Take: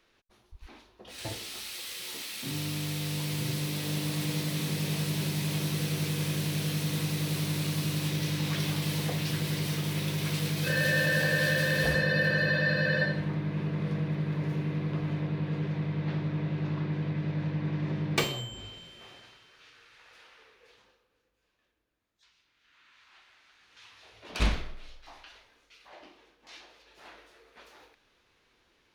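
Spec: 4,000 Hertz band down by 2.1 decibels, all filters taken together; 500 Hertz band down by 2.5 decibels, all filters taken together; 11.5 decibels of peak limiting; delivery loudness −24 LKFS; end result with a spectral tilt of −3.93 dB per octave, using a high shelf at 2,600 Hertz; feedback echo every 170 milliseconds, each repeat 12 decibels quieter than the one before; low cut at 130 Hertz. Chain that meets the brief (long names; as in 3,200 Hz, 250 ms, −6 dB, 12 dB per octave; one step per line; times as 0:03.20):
high-pass filter 130 Hz
parametric band 500 Hz −3 dB
high-shelf EQ 2,600 Hz +4 dB
parametric band 4,000 Hz −6 dB
brickwall limiter −22.5 dBFS
repeating echo 170 ms, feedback 25%, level −12 dB
level +8.5 dB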